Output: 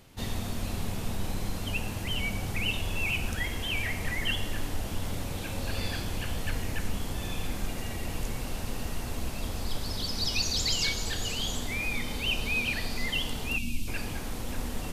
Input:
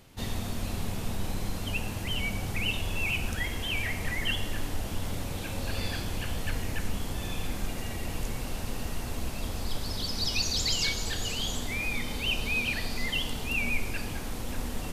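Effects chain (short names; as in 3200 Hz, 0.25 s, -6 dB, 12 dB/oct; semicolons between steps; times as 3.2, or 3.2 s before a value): spectral gain 13.58–13.88, 330–2500 Hz -18 dB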